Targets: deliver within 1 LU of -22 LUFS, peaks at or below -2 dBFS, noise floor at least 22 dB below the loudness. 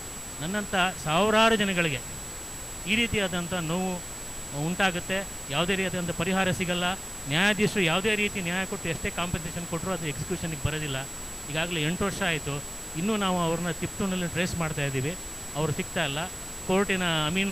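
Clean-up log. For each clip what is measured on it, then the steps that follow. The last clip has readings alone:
steady tone 7800 Hz; tone level -39 dBFS; noise floor -39 dBFS; noise floor target -50 dBFS; loudness -27.5 LUFS; peak -12.0 dBFS; loudness target -22.0 LUFS
-> notch 7800 Hz, Q 30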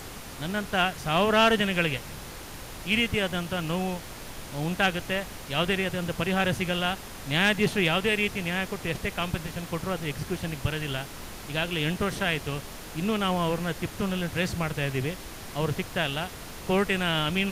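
steady tone none; noise floor -41 dBFS; noise floor target -50 dBFS
-> noise print and reduce 9 dB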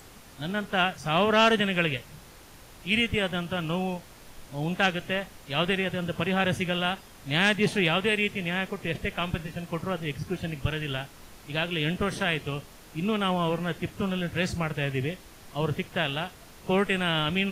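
noise floor -50 dBFS; loudness -27.5 LUFS; peak -12.5 dBFS; loudness target -22.0 LUFS
-> gain +5.5 dB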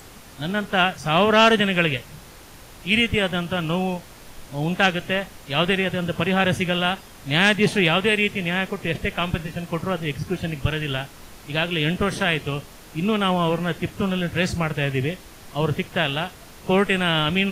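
loudness -22.0 LUFS; peak -7.0 dBFS; noise floor -44 dBFS

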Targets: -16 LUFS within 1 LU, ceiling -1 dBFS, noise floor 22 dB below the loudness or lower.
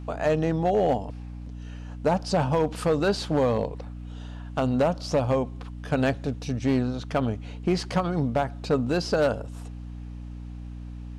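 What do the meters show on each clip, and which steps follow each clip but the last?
clipped 0.9%; flat tops at -16.0 dBFS; hum 60 Hz; harmonics up to 300 Hz; hum level -35 dBFS; loudness -26.0 LUFS; peak -16.0 dBFS; loudness target -16.0 LUFS
-> clip repair -16 dBFS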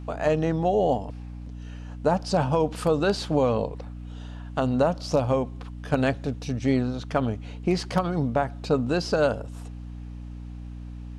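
clipped 0.0%; hum 60 Hz; harmonics up to 240 Hz; hum level -35 dBFS
-> notches 60/120/180/240 Hz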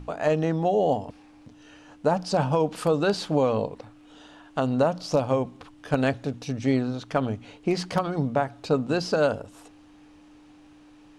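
hum none; loudness -26.0 LUFS; peak -8.5 dBFS; loudness target -16.0 LUFS
-> gain +10 dB; limiter -1 dBFS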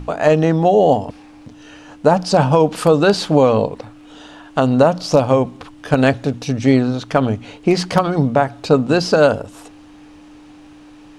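loudness -16.0 LUFS; peak -1.0 dBFS; noise floor -42 dBFS

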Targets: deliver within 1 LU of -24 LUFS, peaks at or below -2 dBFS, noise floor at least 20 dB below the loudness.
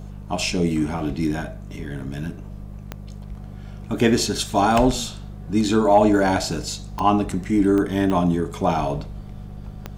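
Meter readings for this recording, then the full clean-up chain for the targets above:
clicks 6; hum 50 Hz; harmonics up to 200 Hz; hum level -34 dBFS; loudness -21.5 LUFS; peak -4.0 dBFS; loudness target -24.0 LUFS
-> de-click; de-hum 50 Hz, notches 4; gain -2.5 dB

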